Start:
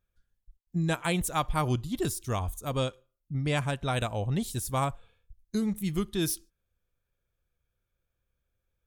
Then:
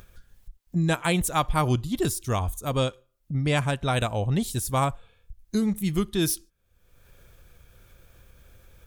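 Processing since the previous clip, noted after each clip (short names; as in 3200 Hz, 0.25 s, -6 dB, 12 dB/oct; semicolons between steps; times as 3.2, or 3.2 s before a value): upward compressor, threshold -37 dBFS; gain +4.5 dB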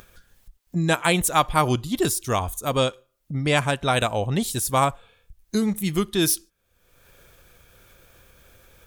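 low shelf 170 Hz -10.5 dB; gain +5.5 dB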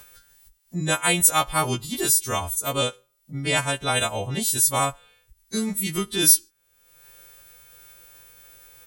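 frequency quantiser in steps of 2 st; gain -3.5 dB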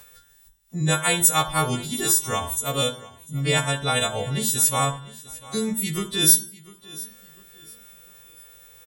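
feedback echo 0.698 s, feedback 35%, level -20 dB; on a send at -5 dB: reverb RT60 0.50 s, pre-delay 3 ms; on the sum: gain -1 dB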